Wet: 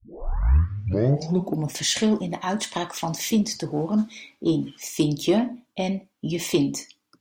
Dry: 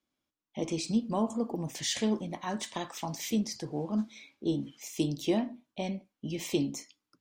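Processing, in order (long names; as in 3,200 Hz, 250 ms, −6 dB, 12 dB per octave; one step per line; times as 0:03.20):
turntable start at the beginning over 1.76 s
harmonic generator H 5 −28 dB, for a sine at −16.5 dBFS
level +7.5 dB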